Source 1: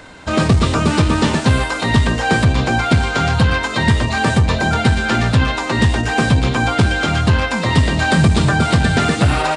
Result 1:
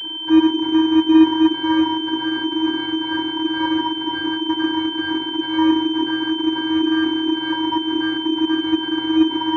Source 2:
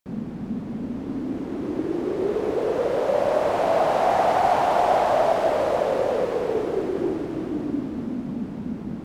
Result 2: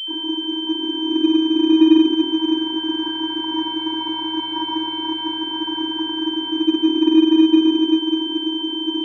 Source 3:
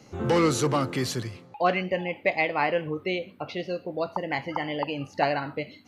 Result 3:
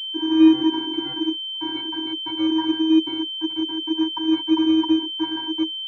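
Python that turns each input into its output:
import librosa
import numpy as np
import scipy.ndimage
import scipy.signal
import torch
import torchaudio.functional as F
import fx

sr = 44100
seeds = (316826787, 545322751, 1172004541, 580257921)

y = fx.fuzz(x, sr, gain_db=36.0, gate_db=-35.0)
y = fx.vocoder(y, sr, bands=32, carrier='square', carrier_hz=319.0)
y = fx.pwm(y, sr, carrier_hz=3100.0)
y = y * 10.0 ** (-2.5 / 20.0)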